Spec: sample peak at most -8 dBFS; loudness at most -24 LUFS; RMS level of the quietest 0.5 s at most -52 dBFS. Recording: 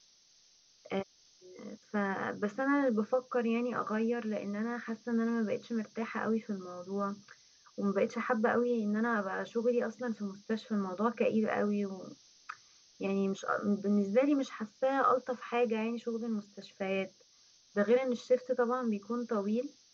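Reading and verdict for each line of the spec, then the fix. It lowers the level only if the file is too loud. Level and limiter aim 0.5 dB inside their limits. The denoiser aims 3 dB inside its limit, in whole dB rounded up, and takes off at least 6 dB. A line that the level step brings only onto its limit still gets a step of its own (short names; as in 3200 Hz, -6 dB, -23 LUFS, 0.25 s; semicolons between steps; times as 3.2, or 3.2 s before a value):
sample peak -16.5 dBFS: OK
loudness -33.0 LUFS: OK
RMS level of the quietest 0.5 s -65 dBFS: OK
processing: none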